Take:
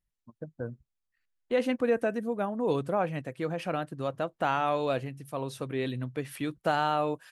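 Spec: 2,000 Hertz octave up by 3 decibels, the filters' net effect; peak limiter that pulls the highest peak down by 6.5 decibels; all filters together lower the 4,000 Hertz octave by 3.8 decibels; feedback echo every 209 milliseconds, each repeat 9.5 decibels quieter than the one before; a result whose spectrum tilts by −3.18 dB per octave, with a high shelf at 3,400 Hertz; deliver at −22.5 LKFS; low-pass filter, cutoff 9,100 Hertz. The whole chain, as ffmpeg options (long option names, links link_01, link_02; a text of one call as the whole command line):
ffmpeg -i in.wav -af "lowpass=9100,equalizer=frequency=2000:width_type=o:gain=7,highshelf=frequency=3400:gain=-5.5,equalizer=frequency=4000:width_type=o:gain=-5.5,alimiter=limit=-19.5dB:level=0:latency=1,aecho=1:1:209|418|627|836:0.335|0.111|0.0365|0.012,volume=9.5dB" out.wav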